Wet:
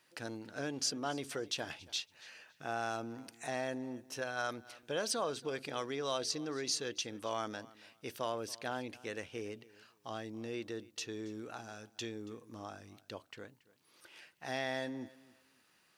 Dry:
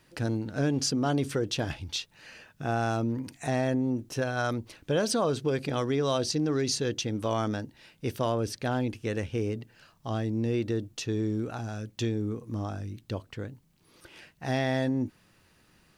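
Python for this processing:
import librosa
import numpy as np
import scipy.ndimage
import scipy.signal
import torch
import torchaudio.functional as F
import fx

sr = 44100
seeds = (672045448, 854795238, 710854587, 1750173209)

p1 = fx.highpass(x, sr, hz=750.0, slope=6)
p2 = p1 + fx.echo_feedback(p1, sr, ms=279, feedback_pct=22, wet_db=-21, dry=0)
y = F.gain(torch.from_numpy(p2), -4.5).numpy()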